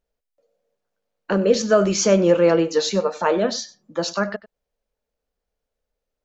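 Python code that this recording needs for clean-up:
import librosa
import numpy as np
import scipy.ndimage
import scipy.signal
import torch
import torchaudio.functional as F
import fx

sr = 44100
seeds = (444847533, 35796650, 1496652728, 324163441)

y = fx.fix_echo_inverse(x, sr, delay_ms=96, level_db=-18.0)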